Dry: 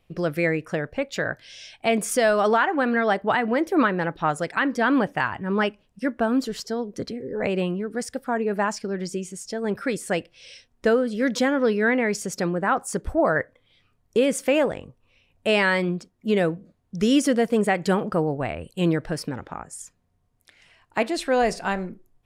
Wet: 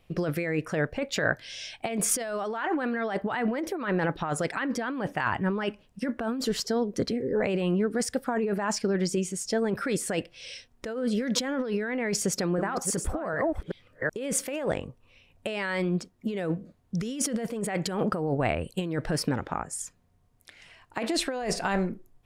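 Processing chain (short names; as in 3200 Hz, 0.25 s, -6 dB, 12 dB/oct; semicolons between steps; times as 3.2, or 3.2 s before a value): 12.2–14.56 reverse delay 0.379 s, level -8 dB; negative-ratio compressor -27 dBFS, ratio -1; gain -1 dB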